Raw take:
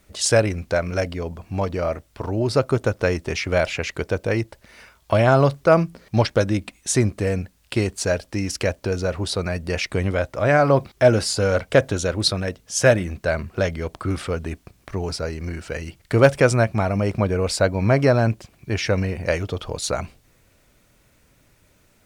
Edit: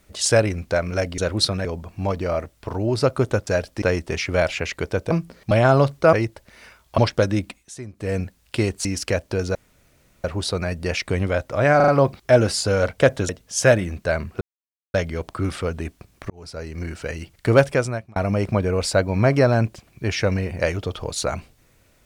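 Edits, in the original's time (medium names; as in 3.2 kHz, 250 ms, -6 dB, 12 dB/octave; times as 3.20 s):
4.29–5.14 s: swap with 5.76–6.16 s
6.66–7.35 s: dip -17 dB, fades 0.24 s
8.03–8.38 s: move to 3.00 s
9.08 s: insert room tone 0.69 s
10.60 s: stutter 0.04 s, 4 plays
12.01–12.48 s: move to 1.18 s
13.60 s: insert silence 0.53 s
14.96–15.52 s: fade in
16.19–16.82 s: fade out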